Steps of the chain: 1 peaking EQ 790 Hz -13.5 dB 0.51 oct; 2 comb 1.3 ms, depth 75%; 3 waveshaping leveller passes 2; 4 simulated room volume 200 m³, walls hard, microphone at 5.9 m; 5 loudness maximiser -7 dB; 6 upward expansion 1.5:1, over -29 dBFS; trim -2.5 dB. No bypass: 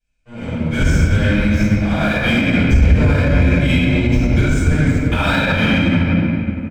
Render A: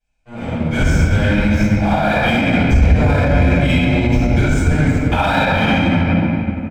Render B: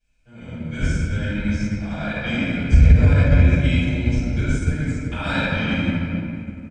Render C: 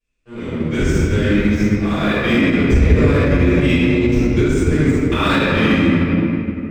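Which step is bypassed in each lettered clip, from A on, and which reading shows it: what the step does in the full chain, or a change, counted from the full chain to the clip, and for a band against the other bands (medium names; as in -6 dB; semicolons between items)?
1, 1 kHz band +6.0 dB; 3, crest factor change +4.0 dB; 2, 500 Hz band +5.5 dB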